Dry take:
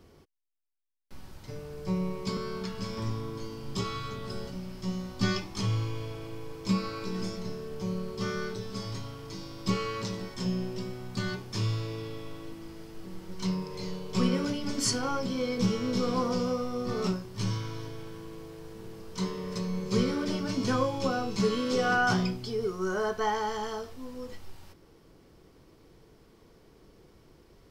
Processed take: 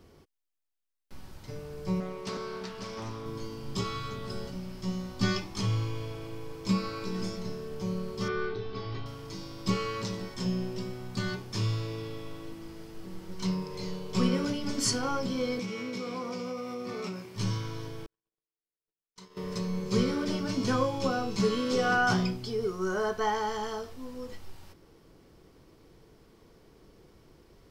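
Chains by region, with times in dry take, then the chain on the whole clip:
2.00–3.26 s: tone controls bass -9 dB, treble -3 dB + loudspeaker Doppler distortion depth 0.28 ms
8.28–9.06 s: low-pass 3.8 kHz 24 dB/octave + comb 2.6 ms, depth 55%
15.59–17.36 s: high-pass 180 Hz + peaking EQ 2.3 kHz +11.5 dB 0.3 oct + compression 4:1, threshold -33 dBFS
18.06–19.37 s: bass shelf 450 Hz -10.5 dB + compression 10:1, threshold -40 dBFS + gate -44 dBFS, range -56 dB
whole clip: none

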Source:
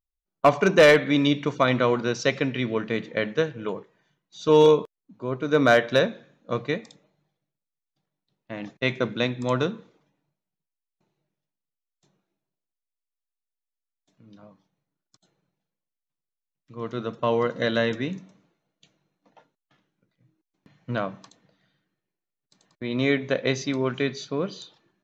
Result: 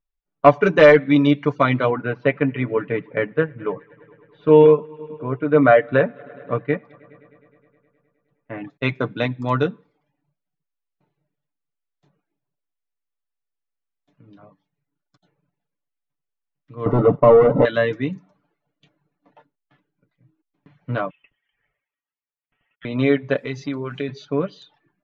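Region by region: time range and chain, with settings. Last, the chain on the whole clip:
1.90–8.70 s: low-pass 2.6 kHz 24 dB/octave + multi-head delay 104 ms, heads first and second, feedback 67%, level -23.5 dB
16.86–17.65 s: waveshaping leveller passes 5 + Savitzky-Golay filter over 65 samples
21.10–22.85 s: high-pass 1 kHz + treble shelf 2.9 kHz -8.5 dB + frequency inversion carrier 3.7 kHz
23.36–24.09 s: treble shelf 5.3 kHz +4.5 dB + compression 2.5:1, threshold -29 dBFS + word length cut 10-bit, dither triangular
whole clip: reverb removal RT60 0.52 s; low-pass 2.6 kHz 12 dB/octave; comb 6.9 ms, depth 62%; trim +3 dB

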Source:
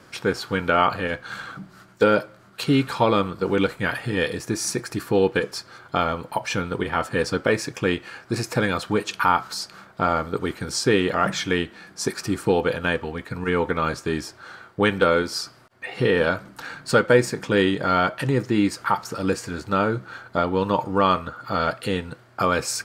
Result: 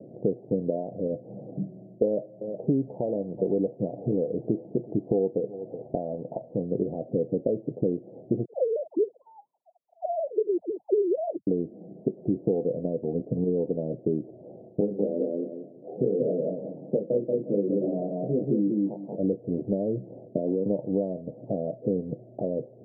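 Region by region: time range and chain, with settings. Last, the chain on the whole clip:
2.04–6.62 s: peaking EQ 880 Hz +8 dB 0.95 oct + delay 370 ms -23.5 dB
8.45–11.47 s: formants replaced by sine waves + Butterworth band-stop 1.5 kHz, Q 1.6 + phase dispersion lows, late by 97 ms, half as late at 440 Hz
14.80–19.16 s: high-pass 140 Hz 24 dB/octave + chorus 1.4 Hz, delay 19.5 ms, depth 7.4 ms + feedback delay 183 ms, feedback 19%, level -3 dB
20.25–20.66 s: peaking EQ 350 Hz +10.5 dB 2.3 oct + compression 12:1, threshold -24 dBFS + three bands expanded up and down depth 70%
whole clip: high-pass 130 Hz 24 dB/octave; compression 6:1, threshold -30 dBFS; steep low-pass 670 Hz 72 dB/octave; trim +8 dB

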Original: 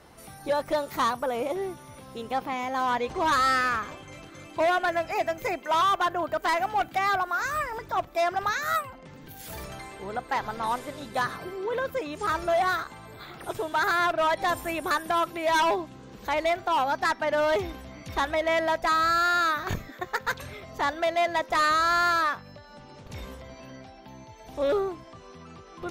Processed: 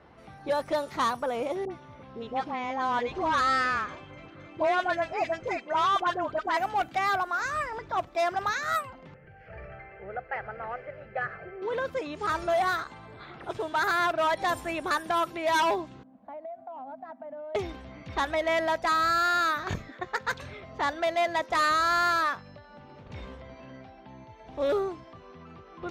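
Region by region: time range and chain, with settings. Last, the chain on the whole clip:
1.65–6.57 s: distance through air 61 m + phase dispersion highs, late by 58 ms, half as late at 970 Hz
9.14–11.62 s: low-pass 3.4 kHz 24 dB/octave + static phaser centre 1 kHz, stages 6
16.03–17.55 s: two resonant band-passes 410 Hz, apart 1.4 oct + compression 12:1, threshold -35 dBFS
whole clip: high-pass 41 Hz; level-controlled noise filter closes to 2.5 kHz, open at -21 dBFS; trim -1.5 dB

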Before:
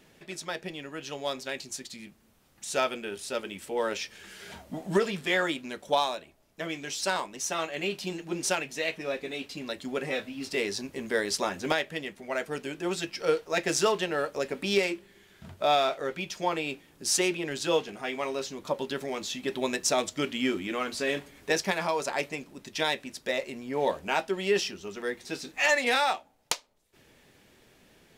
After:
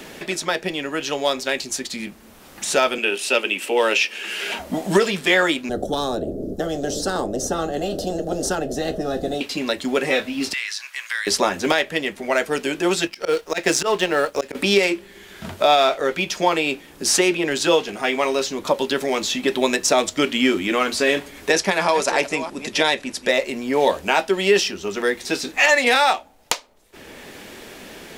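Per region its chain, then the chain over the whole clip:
2.98–4.59 s: high-pass 240 Hz 24 dB/octave + peaking EQ 2.7 kHz +13.5 dB 0.35 oct
5.69–9.41 s: inverse Chebyshev low-pass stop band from 890 Hz + spectrum-flattening compressor 10:1
10.53–11.27 s: high-pass 1.4 kHz 24 dB/octave + compression 3:1, threshold -36 dBFS + treble shelf 5.9 kHz -5 dB
13.07–14.55 s: companding laws mixed up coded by A + slow attack 122 ms
21.51–23.31 s: chunks repeated in reverse 330 ms, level -14 dB + brick-wall FIR low-pass 12 kHz
whole clip: peaking EQ 130 Hz -8 dB 0.83 oct; loudness maximiser +14 dB; three bands compressed up and down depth 40%; trim -3 dB

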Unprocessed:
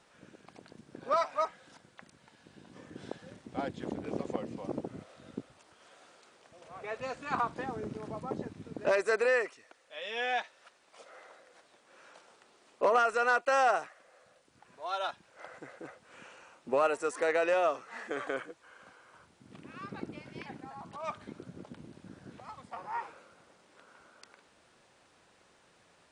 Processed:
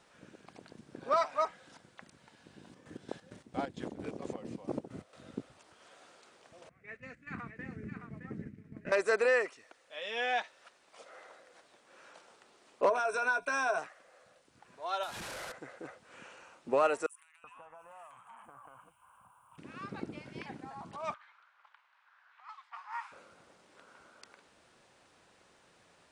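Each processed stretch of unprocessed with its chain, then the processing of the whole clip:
2.63–5.22 s: treble shelf 8.7 kHz +5.5 dB + square tremolo 4.4 Hz, depth 65%
6.69–8.92 s: gate -42 dBFS, range -9 dB + FFT filter 200 Hz 0 dB, 630 Hz -18 dB, 920 Hz -23 dB, 1.4 kHz -10 dB, 2 kHz +1 dB, 3.4 kHz -18 dB, 9.8 kHz -14 dB + delay 616 ms -7.5 dB
12.89–13.78 s: rippled EQ curve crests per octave 1.6, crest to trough 17 dB + compression 2.5:1, threshold -31 dBFS + doubling 16 ms -11 dB
15.03–15.52 s: one-bit delta coder 64 kbps, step -36.5 dBFS + compression 2.5:1, threshold -39 dBFS
17.06–19.58 s: FFT filter 120 Hz 0 dB, 220 Hz -10 dB, 390 Hz -28 dB, 580 Hz -15 dB, 1 kHz +5 dB, 1.9 kHz -18 dB, 2.8 kHz -4 dB, 4.3 kHz -28 dB, 6.6 kHz -14 dB, 12 kHz +14 dB + compression 16:1, threshold -47 dBFS + bands offset in time highs, lows 380 ms, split 1.7 kHz
21.14–23.12 s: steep high-pass 980 Hz + level-controlled noise filter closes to 1.7 kHz, open at -38 dBFS
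whole clip: none

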